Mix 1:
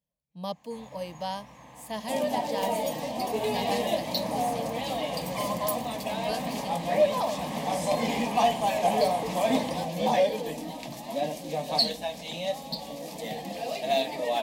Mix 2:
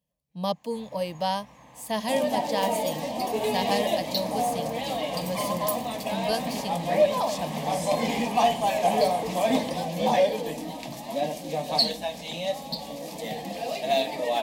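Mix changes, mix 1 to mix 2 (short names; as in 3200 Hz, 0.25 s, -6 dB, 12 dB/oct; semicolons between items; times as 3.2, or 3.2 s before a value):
speech +6.5 dB; first sound: send -10.0 dB; second sound: send on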